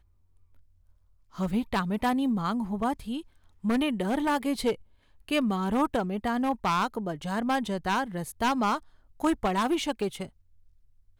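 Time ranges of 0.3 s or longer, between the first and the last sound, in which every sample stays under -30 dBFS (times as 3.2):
3.19–3.65
4.73–5.28
8.77–9.22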